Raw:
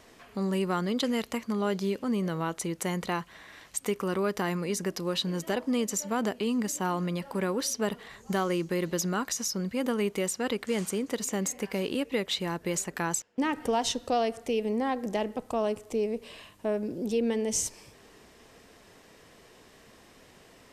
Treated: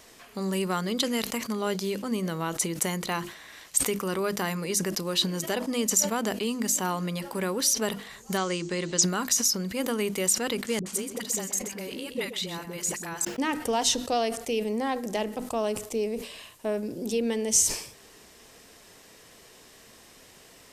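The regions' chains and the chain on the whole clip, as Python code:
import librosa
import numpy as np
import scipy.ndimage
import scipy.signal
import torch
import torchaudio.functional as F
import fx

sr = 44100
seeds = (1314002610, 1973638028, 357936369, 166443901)

y = fx.chain(x, sr, fx.ellip_lowpass(hz=8100.0, order=4, stop_db=60),
    fx.high_shelf(hz=4300.0, db=4.5), at=(8.37, 9.03))
y = fx.chain(y, sr, fx.level_steps(step_db=9),
    fx.dispersion(late='highs', ms=69.0, hz=470.0),
    fx.echo_single(ms=127, db=-11.0), at=(10.79, 13.25))
y = fx.high_shelf(y, sr, hz=3800.0, db=10.5)
y = fx.hum_notches(y, sr, base_hz=50, count=7)
y = fx.sustainer(y, sr, db_per_s=100.0)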